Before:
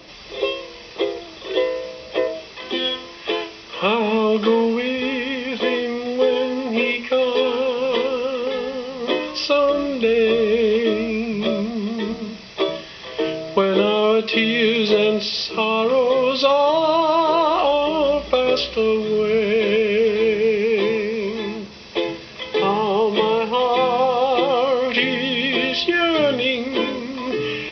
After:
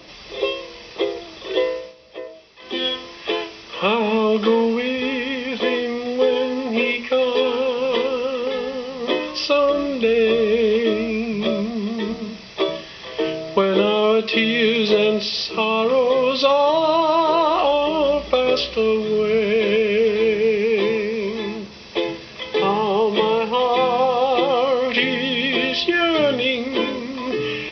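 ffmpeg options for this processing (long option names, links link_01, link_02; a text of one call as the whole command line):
ffmpeg -i in.wav -filter_complex "[0:a]asplit=3[link_01][link_02][link_03];[link_01]atrim=end=1.95,asetpts=PTS-STARTPTS,afade=type=out:start_time=1.7:duration=0.25:silence=0.237137[link_04];[link_02]atrim=start=1.95:end=2.57,asetpts=PTS-STARTPTS,volume=-12.5dB[link_05];[link_03]atrim=start=2.57,asetpts=PTS-STARTPTS,afade=type=in:duration=0.25:silence=0.237137[link_06];[link_04][link_05][link_06]concat=n=3:v=0:a=1" out.wav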